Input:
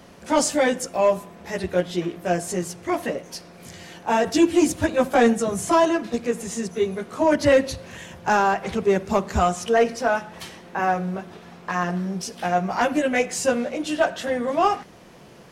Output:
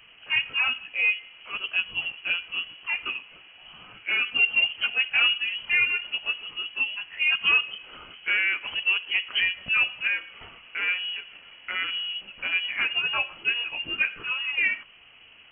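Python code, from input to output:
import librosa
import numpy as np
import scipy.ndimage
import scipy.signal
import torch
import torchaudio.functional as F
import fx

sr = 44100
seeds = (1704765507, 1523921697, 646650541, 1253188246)

y = fx.env_lowpass_down(x, sr, base_hz=2200.0, full_db=-16.5)
y = fx.freq_invert(y, sr, carrier_hz=3100)
y = F.gain(torch.from_numpy(y), -5.0).numpy()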